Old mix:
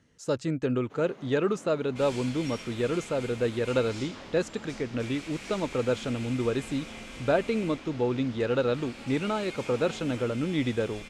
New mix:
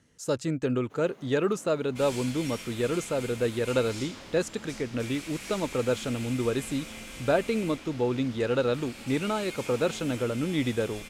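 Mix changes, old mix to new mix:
first sound −4.0 dB
master: remove high-frequency loss of the air 61 metres

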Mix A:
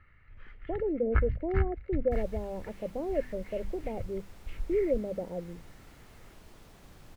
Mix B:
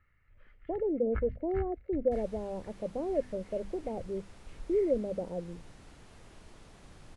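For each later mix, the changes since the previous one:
first sound −10.0 dB
master: add Butterworth low-pass 11,000 Hz 96 dB per octave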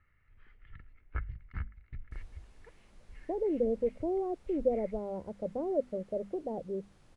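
speech: entry +2.60 s
second sound −9.5 dB

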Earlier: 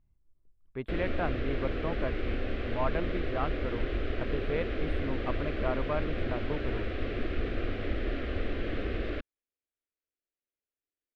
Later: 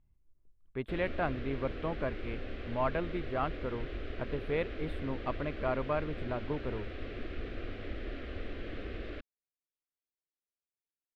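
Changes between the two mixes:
background −8.0 dB
master: add parametric band 12,000 Hz +3.5 dB 2.7 octaves

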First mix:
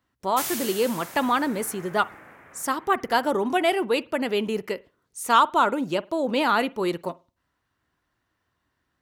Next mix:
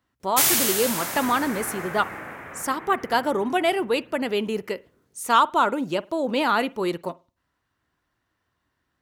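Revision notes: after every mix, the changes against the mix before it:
background +11.0 dB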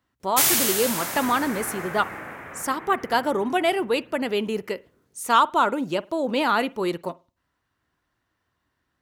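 nothing changed

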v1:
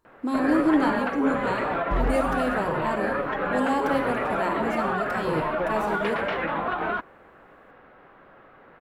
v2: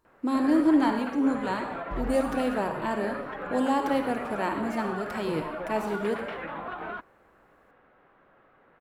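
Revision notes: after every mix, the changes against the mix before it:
background −9.0 dB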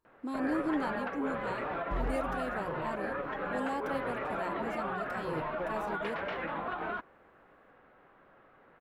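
speech −7.0 dB
reverb: off

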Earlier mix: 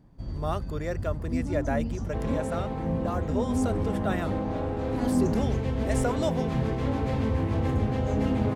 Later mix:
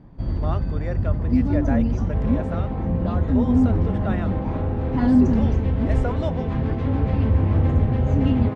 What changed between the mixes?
first sound +10.0 dB
master: add low-pass filter 3,200 Hz 12 dB per octave

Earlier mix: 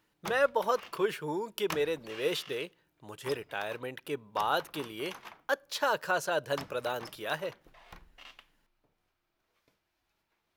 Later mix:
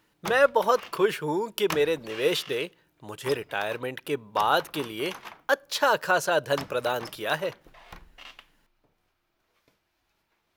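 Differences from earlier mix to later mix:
speech +6.5 dB
background +5.5 dB

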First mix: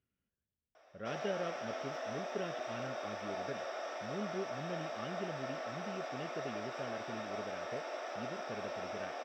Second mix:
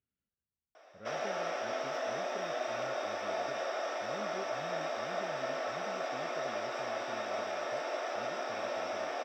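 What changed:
speech −6.0 dB
background +5.5 dB

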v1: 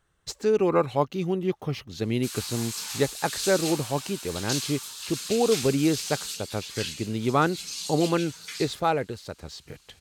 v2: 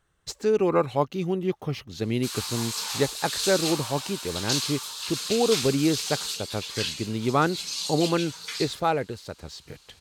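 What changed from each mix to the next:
background: add graphic EQ with 10 bands 500 Hz +7 dB, 1,000 Hz +7 dB, 4,000 Hz +5 dB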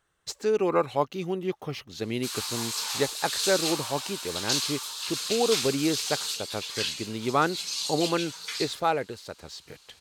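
master: add low-shelf EQ 230 Hz −9.5 dB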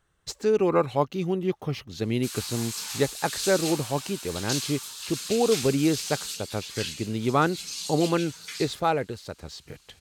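background: add graphic EQ with 10 bands 500 Hz −7 dB, 1,000 Hz −7 dB, 4,000 Hz −5 dB
master: add low-shelf EQ 230 Hz +9.5 dB

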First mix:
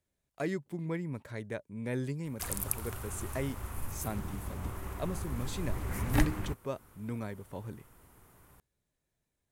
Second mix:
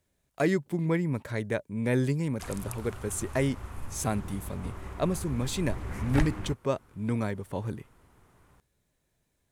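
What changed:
speech +8.5 dB
background: add high-frequency loss of the air 57 metres

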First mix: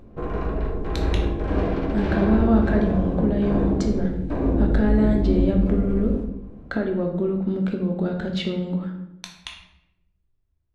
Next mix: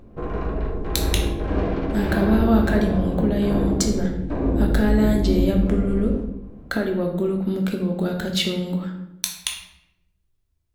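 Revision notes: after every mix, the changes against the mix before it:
speech: remove head-to-tape spacing loss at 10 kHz 25 dB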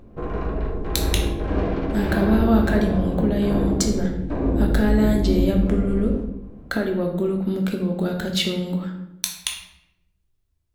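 nothing changed

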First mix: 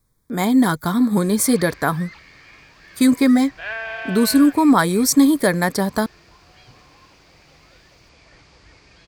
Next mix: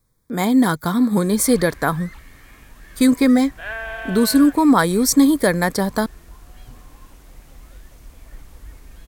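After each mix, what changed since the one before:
speech: remove notch filter 500 Hz, Q 14
background: remove loudspeaker in its box 120–6,300 Hz, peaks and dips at 240 Hz −10 dB, 2,400 Hz +7 dB, 4,700 Hz +10 dB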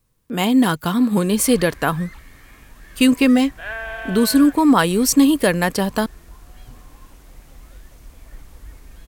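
speech: remove Butterworth band-reject 2,800 Hz, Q 2.7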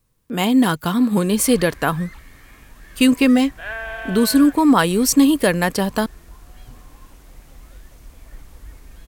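nothing changed

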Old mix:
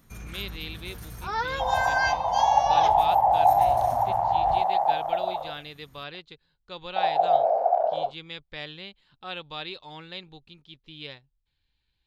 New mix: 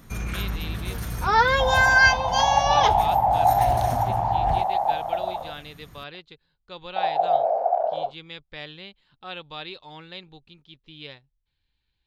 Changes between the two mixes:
first sound +10.5 dB
master: add high-shelf EQ 6,500 Hz −5 dB

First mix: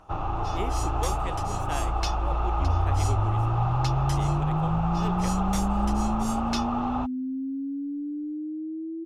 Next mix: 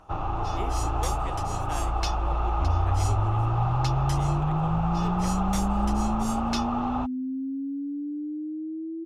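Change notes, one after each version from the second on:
speech −4.0 dB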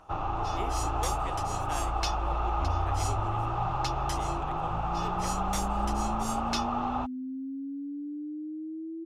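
second sound: add parametric band 150 Hz −13.5 dB 0.7 octaves
master: add low-shelf EQ 350 Hz −5 dB

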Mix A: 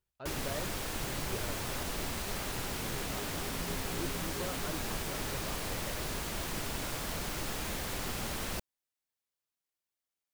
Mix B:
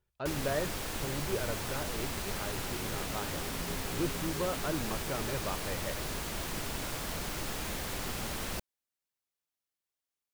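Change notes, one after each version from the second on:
speech +8.0 dB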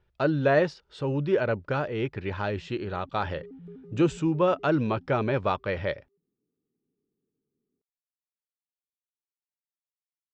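speech +11.5 dB
first sound: muted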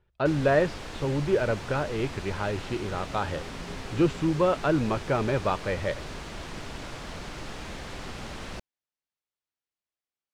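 first sound: unmuted
master: add high-frequency loss of the air 88 metres

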